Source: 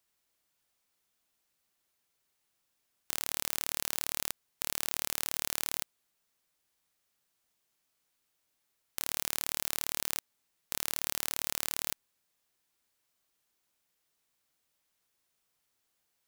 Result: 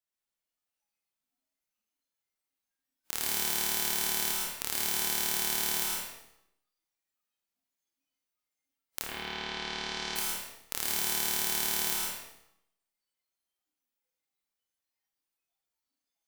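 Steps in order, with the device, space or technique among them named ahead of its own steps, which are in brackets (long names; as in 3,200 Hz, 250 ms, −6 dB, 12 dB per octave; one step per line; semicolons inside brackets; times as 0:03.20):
bathroom (convolution reverb RT60 0.75 s, pre-delay 103 ms, DRR −2.5 dB)
0:09.02–0:10.15: low-pass filter 3,200 Hz → 5,500 Hz 24 dB per octave
noise reduction from a noise print of the clip's start 17 dB
four-comb reverb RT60 0.64 s, combs from 29 ms, DRR 3 dB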